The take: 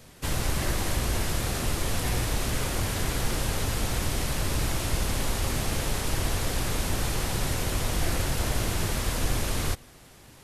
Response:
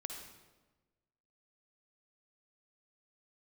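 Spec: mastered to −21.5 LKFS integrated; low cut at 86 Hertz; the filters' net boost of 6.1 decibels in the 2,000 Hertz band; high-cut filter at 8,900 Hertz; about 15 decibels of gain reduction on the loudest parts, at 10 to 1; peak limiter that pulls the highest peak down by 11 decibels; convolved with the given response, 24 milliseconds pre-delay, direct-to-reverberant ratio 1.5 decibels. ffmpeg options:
-filter_complex "[0:a]highpass=86,lowpass=8900,equalizer=frequency=2000:width_type=o:gain=7.5,acompressor=threshold=-41dB:ratio=10,alimiter=level_in=16.5dB:limit=-24dB:level=0:latency=1,volume=-16.5dB,asplit=2[link_01][link_02];[1:a]atrim=start_sample=2205,adelay=24[link_03];[link_02][link_03]afir=irnorm=-1:irlink=0,volume=0dB[link_04];[link_01][link_04]amix=inputs=2:normalize=0,volume=25dB"

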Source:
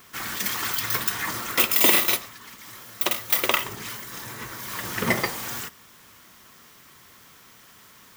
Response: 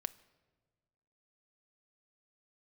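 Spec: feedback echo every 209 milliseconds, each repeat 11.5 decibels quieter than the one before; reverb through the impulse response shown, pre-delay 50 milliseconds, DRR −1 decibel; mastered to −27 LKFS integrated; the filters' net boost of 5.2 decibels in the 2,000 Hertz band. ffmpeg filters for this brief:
-filter_complex "[0:a]equalizer=frequency=2000:width_type=o:gain=6,aecho=1:1:209|418|627:0.266|0.0718|0.0194,asplit=2[link_01][link_02];[1:a]atrim=start_sample=2205,adelay=50[link_03];[link_02][link_03]afir=irnorm=-1:irlink=0,volume=2dB[link_04];[link_01][link_04]amix=inputs=2:normalize=0,volume=-9dB"

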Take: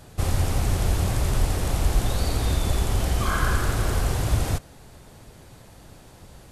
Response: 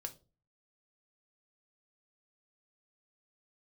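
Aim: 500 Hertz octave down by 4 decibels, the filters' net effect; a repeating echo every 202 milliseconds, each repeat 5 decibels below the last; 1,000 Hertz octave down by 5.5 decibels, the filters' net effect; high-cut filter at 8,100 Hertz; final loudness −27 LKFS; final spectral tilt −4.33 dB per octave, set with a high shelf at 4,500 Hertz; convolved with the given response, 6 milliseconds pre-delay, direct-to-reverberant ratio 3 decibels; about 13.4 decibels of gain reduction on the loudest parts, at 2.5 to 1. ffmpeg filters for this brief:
-filter_complex "[0:a]lowpass=8100,equalizer=frequency=500:width_type=o:gain=-3.5,equalizer=frequency=1000:width_type=o:gain=-6.5,highshelf=frequency=4500:gain=4,acompressor=threshold=-38dB:ratio=2.5,aecho=1:1:202|404|606|808|1010|1212|1414:0.562|0.315|0.176|0.0988|0.0553|0.031|0.0173,asplit=2[link_01][link_02];[1:a]atrim=start_sample=2205,adelay=6[link_03];[link_02][link_03]afir=irnorm=-1:irlink=0,volume=0dB[link_04];[link_01][link_04]amix=inputs=2:normalize=0,volume=10.5dB"

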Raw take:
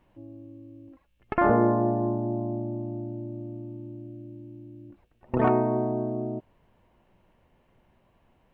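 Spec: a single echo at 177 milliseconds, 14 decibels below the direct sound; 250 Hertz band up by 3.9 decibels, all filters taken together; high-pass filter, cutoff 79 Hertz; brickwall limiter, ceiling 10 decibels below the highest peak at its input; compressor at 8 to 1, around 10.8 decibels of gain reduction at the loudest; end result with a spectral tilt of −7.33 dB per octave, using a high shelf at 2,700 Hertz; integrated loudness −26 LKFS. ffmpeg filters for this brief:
ffmpeg -i in.wav -af "highpass=79,equalizer=frequency=250:width_type=o:gain=5,highshelf=frequency=2700:gain=7.5,acompressor=threshold=-25dB:ratio=8,alimiter=limit=-22.5dB:level=0:latency=1,aecho=1:1:177:0.2,volume=7.5dB" out.wav

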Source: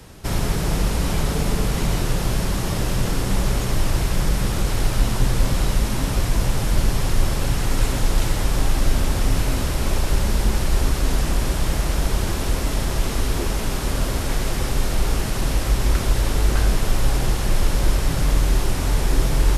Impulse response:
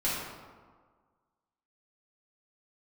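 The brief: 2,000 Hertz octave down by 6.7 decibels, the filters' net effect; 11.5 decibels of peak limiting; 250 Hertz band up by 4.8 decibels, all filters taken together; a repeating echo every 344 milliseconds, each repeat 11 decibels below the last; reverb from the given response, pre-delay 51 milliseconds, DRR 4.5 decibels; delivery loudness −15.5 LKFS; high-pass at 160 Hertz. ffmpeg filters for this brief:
-filter_complex "[0:a]highpass=160,equalizer=frequency=250:width_type=o:gain=8,equalizer=frequency=2000:width_type=o:gain=-9,alimiter=limit=-23dB:level=0:latency=1,aecho=1:1:344|688|1032:0.282|0.0789|0.0221,asplit=2[link_01][link_02];[1:a]atrim=start_sample=2205,adelay=51[link_03];[link_02][link_03]afir=irnorm=-1:irlink=0,volume=-13.5dB[link_04];[link_01][link_04]amix=inputs=2:normalize=0,volume=14dB"

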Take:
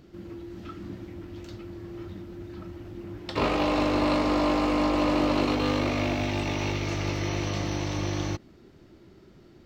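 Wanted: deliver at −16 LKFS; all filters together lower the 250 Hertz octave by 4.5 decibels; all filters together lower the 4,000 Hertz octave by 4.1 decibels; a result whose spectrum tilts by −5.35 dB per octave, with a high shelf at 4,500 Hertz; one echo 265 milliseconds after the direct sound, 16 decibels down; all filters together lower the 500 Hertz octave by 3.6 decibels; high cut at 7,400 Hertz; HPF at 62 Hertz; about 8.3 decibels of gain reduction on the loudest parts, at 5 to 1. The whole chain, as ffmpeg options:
ffmpeg -i in.wav -af "highpass=62,lowpass=7400,equalizer=frequency=250:width_type=o:gain=-4.5,equalizer=frequency=500:width_type=o:gain=-3.5,equalizer=frequency=4000:width_type=o:gain=-9,highshelf=frequency=4500:gain=7.5,acompressor=threshold=-33dB:ratio=5,aecho=1:1:265:0.158,volume=22dB" out.wav

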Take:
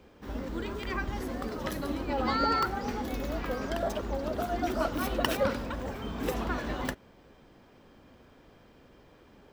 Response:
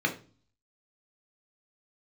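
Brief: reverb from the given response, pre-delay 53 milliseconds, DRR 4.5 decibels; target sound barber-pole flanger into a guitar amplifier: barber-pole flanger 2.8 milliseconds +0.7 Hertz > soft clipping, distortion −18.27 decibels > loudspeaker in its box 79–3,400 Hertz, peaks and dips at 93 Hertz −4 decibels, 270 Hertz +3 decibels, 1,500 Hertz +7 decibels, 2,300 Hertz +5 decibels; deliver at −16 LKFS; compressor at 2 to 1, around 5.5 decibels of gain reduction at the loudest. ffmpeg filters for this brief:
-filter_complex "[0:a]acompressor=threshold=-33dB:ratio=2,asplit=2[link_01][link_02];[1:a]atrim=start_sample=2205,adelay=53[link_03];[link_02][link_03]afir=irnorm=-1:irlink=0,volume=-14.5dB[link_04];[link_01][link_04]amix=inputs=2:normalize=0,asplit=2[link_05][link_06];[link_06]adelay=2.8,afreqshift=0.7[link_07];[link_05][link_07]amix=inputs=2:normalize=1,asoftclip=threshold=-28.5dB,highpass=79,equalizer=frequency=93:width_type=q:width=4:gain=-4,equalizer=frequency=270:width_type=q:width=4:gain=3,equalizer=frequency=1500:width_type=q:width=4:gain=7,equalizer=frequency=2300:width_type=q:width=4:gain=5,lowpass=frequency=3400:width=0.5412,lowpass=frequency=3400:width=1.3066,volume=21dB"

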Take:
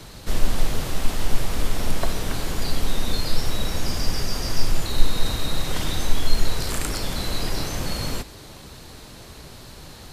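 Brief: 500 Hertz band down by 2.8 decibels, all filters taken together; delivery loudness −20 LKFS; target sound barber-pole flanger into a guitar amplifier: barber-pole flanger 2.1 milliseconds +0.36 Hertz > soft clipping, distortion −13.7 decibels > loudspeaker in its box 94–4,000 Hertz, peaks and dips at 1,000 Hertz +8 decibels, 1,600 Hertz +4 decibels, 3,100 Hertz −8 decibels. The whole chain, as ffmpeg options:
ffmpeg -i in.wav -filter_complex "[0:a]equalizer=frequency=500:width_type=o:gain=-4,asplit=2[link_01][link_02];[link_02]adelay=2.1,afreqshift=0.36[link_03];[link_01][link_03]amix=inputs=2:normalize=1,asoftclip=threshold=-14dB,highpass=94,equalizer=frequency=1000:width_type=q:width=4:gain=8,equalizer=frequency=1600:width_type=q:width=4:gain=4,equalizer=frequency=3100:width_type=q:width=4:gain=-8,lowpass=frequency=4000:width=0.5412,lowpass=frequency=4000:width=1.3066,volume=15.5dB" out.wav

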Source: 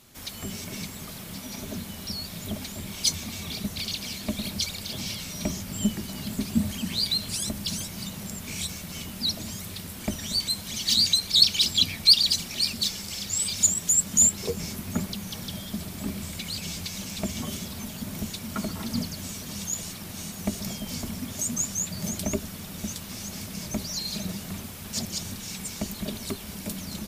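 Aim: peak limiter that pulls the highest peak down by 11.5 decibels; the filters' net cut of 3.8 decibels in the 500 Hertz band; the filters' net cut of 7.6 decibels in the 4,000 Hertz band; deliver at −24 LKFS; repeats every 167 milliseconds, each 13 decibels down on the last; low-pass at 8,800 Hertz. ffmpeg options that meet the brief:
ffmpeg -i in.wav -af "lowpass=8800,equalizer=frequency=500:width_type=o:gain=-5,equalizer=frequency=4000:width_type=o:gain=-8.5,alimiter=limit=-22.5dB:level=0:latency=1,aecho=1:1:167|334|501:0.224|0.0493|0.0108,volume=10.5dB" out.wav

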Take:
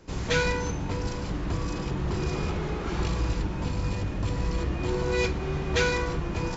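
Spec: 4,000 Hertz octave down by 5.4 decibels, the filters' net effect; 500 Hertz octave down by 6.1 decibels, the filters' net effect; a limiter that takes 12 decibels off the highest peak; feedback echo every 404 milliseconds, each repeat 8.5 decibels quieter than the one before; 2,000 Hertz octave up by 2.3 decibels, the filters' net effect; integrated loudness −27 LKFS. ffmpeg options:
ffmpeg -i in.wav -af "equalizer=frequency=500:width_type=o:gain=-7.5,equalizer=frequency=2000:width_type=o:gain=6,equalizer=frequency=4000:width_type=o:gain=-9,alimiter=limit=-23.5dB:level=0:latency=1,aecho=1:1:404|808|1212|1616:0.376|0.143|0.0543|0.0206,volume=5.5dB" out.wav

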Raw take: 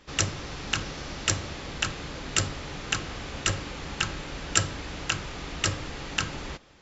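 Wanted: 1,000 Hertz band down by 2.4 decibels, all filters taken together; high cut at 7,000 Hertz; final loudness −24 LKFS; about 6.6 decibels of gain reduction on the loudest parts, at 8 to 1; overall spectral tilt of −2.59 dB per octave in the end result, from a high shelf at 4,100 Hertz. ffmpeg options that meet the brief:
ffmpeg -i in.wav -af "lowpass=7000,equalizer=frequency=1000:width_type=o:gain=-4,highshelf=frequency=4100:gain=5.5,acompressor=threshold=-28dB:ratio=8,volume=11dB" out.wav

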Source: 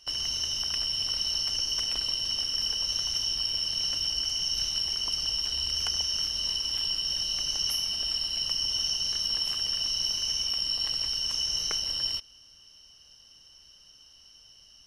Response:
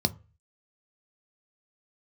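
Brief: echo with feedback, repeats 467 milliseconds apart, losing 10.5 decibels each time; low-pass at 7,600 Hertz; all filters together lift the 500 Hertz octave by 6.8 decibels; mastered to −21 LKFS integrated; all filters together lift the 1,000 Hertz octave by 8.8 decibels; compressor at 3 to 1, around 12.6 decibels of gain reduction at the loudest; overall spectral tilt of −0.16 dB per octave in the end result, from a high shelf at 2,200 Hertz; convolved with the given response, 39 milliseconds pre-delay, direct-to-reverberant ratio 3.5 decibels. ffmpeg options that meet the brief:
-filter_complex "[0:a]lowpass=7600,equalizer=frequency=500:width_type=o:gain=5.5,equalizer=frequency=1000:width_type=o:gain=8.5,highshelf=frequency=2200:gain=4.5,acompressor=threshold=-40dB:ratio=3,aecho=1:1:467|934|1401:0.299|0.0896|0.0269,asplit=2[link_01][link_02];[1:a]atrim=start_sample=2205,adelay=39[link_03];[link_02][link_03]afir=irnorm=-1:irlink=0,volume=-11.5dB[link_04];[link_01][link_04]amix=inputs=2:normalize=0,volume=12dB"

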